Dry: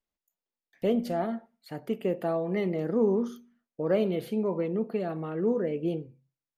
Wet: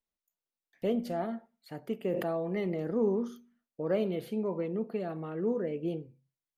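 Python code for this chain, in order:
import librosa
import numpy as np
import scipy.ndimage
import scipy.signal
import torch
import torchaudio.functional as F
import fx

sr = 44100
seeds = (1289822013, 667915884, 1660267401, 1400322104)

y = fx.sustainer(x, sr, db_per_s=35.0, at=(2.08, 3.09))
y = F.gain(torch.from_numpy(y), -4.0).numpy()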